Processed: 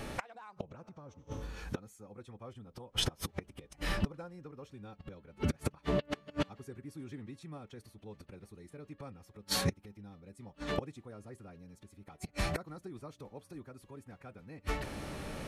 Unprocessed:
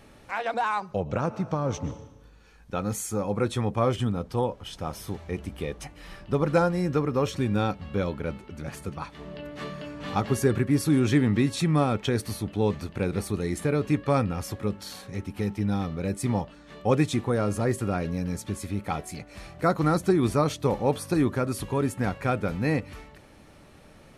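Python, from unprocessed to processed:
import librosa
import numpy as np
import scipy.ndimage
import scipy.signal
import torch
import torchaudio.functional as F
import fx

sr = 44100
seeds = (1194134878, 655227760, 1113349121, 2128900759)

y = fx.gate_flip(x, sr, shuts_db=-28.0, range_db=-35)
y = fx.stretch_vocoder(y, sr, factor=0.64)
y = y * librosa.db_to_amplitude(11.5)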